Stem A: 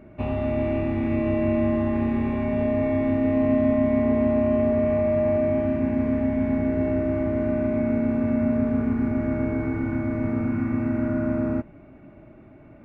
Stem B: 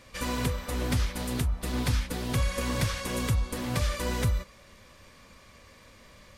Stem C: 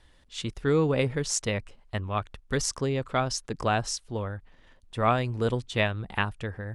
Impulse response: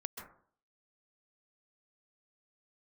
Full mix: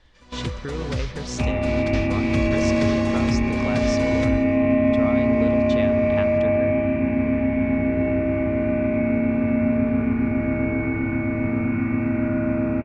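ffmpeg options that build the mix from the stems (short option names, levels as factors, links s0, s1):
-filter_complex "[0:a]equalizer=f=2400:t=o:w=0.38:g=12,adelay=1200,volume=1.26[s0];[1:a]volume=0.891,asplit=2[s1][s2];[s2]volume=0.133[s3];[2:a]acompressor=threshold=0.0282:ratio=6,volume=1,asplit=3[s4][s5][s6];[s5]volume=0.335[s7];[s6]apad=whole_len=281331[s8];[s1][s8]sidechaingate=range=0.0224:threshold=0.00224:ratio=16:detection=peak[s9];[3:a]atrim=start_sample=2205[s10];[s3][s7]amix=inputs=2:normalize=0[s11];[s11][s10]afir=irnorm=-1:irlink=0[s12];[s0][s9][s4][s12]amix=inputs=4:normalize=0,lowpass=f=6400:w=0.5412,lowpass=f=6400:w=1.3066"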